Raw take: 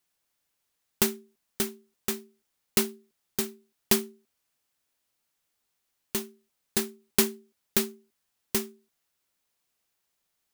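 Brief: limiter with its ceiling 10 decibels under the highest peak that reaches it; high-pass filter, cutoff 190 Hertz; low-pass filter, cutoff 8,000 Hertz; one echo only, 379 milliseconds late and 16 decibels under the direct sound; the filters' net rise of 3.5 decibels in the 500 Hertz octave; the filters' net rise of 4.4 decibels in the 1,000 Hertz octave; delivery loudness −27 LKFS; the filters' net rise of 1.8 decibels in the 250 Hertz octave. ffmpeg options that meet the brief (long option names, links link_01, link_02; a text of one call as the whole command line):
ffmpeg -i in.wav -af "highpass=190,lowpass=8000,equalizer=frequency=250:width_type=o:gain=3.5,equalizer=frequency=500:width_type=o:gain=3,equalizer=frequency=1000:width_type=o:gain=4.5,alimiter=limit=-16dB:level=0:latency=1,aecho=1:1:379:0.158,volume=7.5dB" out.wav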